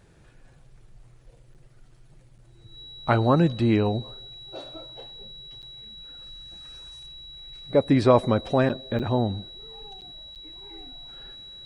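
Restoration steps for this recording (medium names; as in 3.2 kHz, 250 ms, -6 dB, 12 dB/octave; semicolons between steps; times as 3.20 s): band-stop 3.9 kHz, Q 30; interpolate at 1.54/2.38/5.62/8.69/8.99/10.01/10.35 s, 8 ms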